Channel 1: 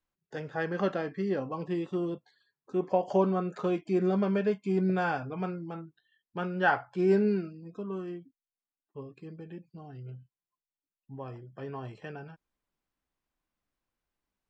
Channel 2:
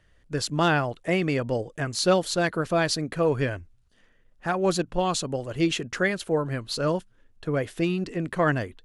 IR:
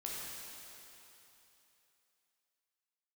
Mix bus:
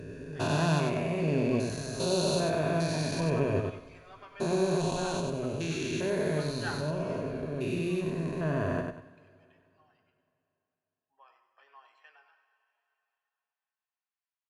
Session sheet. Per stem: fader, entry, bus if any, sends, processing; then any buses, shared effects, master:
−3.0 dB, 0.00 s, send −8 dB, echo send −9.5 dB, high-pass filter 1,200 Hz 24 dB per octave; spectral tilt −4 dB per octave
−2.0 dB, 0.00 s, send −16.5 dB, echo send −3.5 dB, spectrum averaged block by block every 400 ms; EQ curve with evenly spaced ripples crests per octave 1.5, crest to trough 9 dB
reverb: on, RT60 3.2 s, pre-delay 11 ms
echo: repeating echo 96 ms, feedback 29%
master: parametric band 1,500 Hz −6.5 dB 0.83 octaves

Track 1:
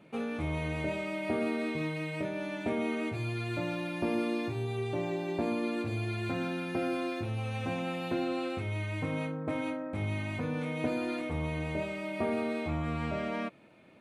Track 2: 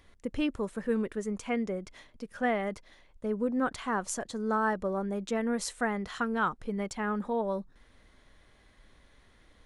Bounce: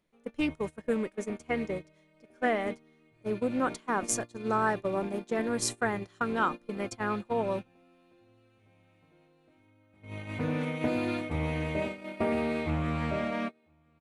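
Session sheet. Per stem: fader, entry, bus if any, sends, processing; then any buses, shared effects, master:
+2.5 dB, 0.00 s, no send, echo send −12.5 dB, automatic ducking −12 dB, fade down 0.25 s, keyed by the second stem
+1.0 dB, 0.00 s, no send, no echo send, bass and treble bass −4 dB, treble +6 dB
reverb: not used
echo: single-tap delay 1,003 ms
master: noise gate −32 dBFS, range −23 dB; highs frequency-modulated by the lows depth 0.16 ms

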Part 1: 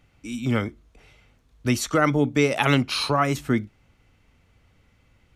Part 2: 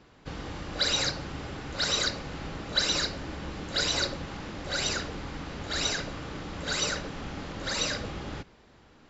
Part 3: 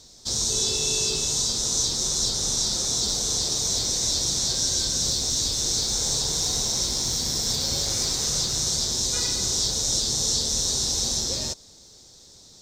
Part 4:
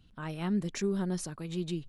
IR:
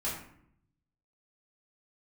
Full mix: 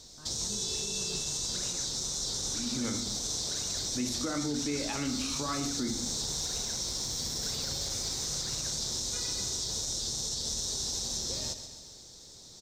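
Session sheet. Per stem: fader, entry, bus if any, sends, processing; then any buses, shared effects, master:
−13.5 dB, 2.30 s, send −7 dB, no echo send, parametric band 260 Hz +7 dB 0.93 octaves
−16.5 dB, 0.75 s, no send, no echo send, no processing
−1.5 dB, 0.00 s, no send, echo send −10.5 dB, downward compressor 2.5 to 1, threshold −32 dBFS, peak gain reduction 8 dB
−15.0 dB, 0.00 s, no send, no echo send, no processing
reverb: on, RT60 0.65 s, pre-delay 4 ms
echo: repeating echo 134 ms, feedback 57%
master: brickwall limiter −23.5 dBFS, peak gain reduction 10.5 dB

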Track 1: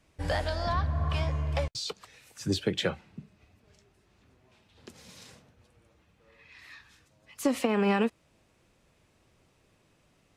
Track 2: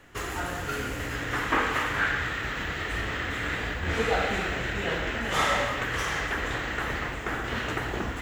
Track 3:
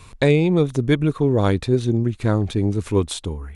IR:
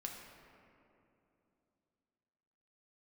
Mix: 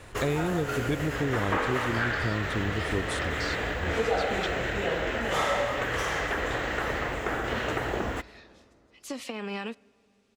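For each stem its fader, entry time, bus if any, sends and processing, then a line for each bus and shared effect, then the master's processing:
−11.0 dB, 1.65 s, send −19.5 dB, parametric band 4,300 Hz +10 dB 2.3 octaves
+1.0 dB, 0.00 s, send −16.5 dB, parametric band 560 Hz +7 dB 1.2 octaves
−6.5 dB, 0.00 s, no send, no processing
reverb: on, RT60 2.9 s, pre-delay 5 ms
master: downward compressor 2 to 1, threshold −28 dBFS, peak gain reduction 7.5 dB

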